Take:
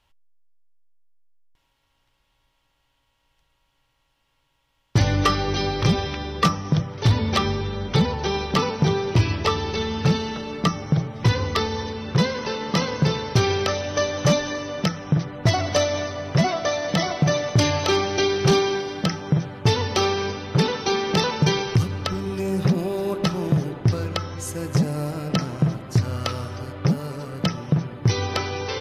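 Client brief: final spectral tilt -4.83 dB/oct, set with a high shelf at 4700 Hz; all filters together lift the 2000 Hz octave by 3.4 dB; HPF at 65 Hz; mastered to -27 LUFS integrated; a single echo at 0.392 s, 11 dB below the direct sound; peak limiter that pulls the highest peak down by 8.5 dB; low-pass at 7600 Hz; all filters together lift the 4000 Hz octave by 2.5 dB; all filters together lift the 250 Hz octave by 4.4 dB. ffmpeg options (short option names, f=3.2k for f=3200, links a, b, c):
-af "highpass=65,lowpass=7.6k,equalizer=f=250:t=o:g=7,equalizer=f=2k:t=o:g=4,equalizer=f=4k:t=o:g=6,highshelf=f=4.7k:g=-8,alimiter=limit=-12dB:level=0:latency=1,aecho=1:1:392:0.282,volume=-4dB"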